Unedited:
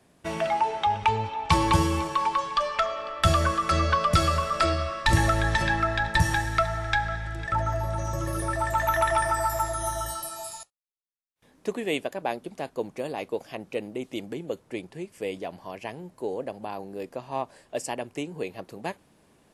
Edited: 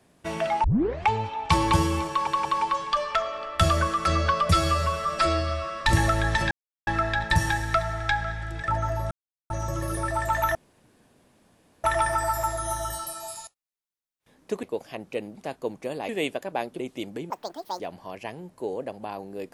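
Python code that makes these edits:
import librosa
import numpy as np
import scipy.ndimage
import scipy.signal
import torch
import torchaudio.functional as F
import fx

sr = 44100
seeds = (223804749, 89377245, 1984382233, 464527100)

y = fx.edit(x, sr, fx.tape_start(start_s=0.64, length_s=0.45),
    fx.stutter(start_s=2.09, slice_s=0.18, count=3),
    fx.stretch_span(start_s=4.13, length_s=0.88, factor=1.5),
    fx.insert_silence(at_s=5.71, length_s=0.36),
    fx.insert_silence(at_s=7.95, length_s=0.39),
    fx.insert_room_tone(at_s=9.0, length_s=1.29),
    fx.swap(start_s=11.79, length_s=0.7, other_s=13.23, other_length_s=0.72),
    fx.speed_span(start_s=14.46, length_s=0.94, speed=1.89), tone=tone)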